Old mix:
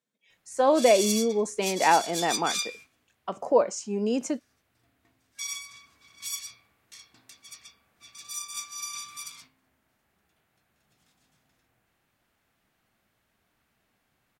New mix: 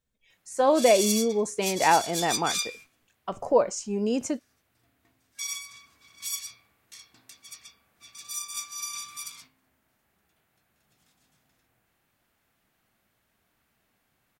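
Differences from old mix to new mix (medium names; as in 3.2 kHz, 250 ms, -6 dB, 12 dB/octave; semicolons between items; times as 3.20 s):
speech: remove high-pass 170 Hz 24 dB/octave; master: add treble shelf 11 kHz +6.5 dB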